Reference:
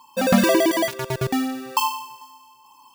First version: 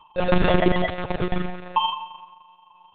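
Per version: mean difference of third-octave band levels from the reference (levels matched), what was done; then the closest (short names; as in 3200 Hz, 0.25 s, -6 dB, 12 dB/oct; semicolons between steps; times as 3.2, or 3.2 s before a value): 11.5 dB: AM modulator 27 Hz, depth 70%; digital reverb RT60 0.52 s, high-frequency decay 0.5×, pre-delay 25 ms, DRR 10.5 dB; monotone LPC vocoder at 8 kHz 180 Hz; gain +3 dB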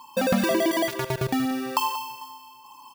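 4.5 dB: bell 7400 Hz -2.5 dB; compressor 3:1, threshold -27 dBFS, peak gain reduction 11.5 dB; echo 0.185 s -13.5 dB; gain +4 dB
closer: second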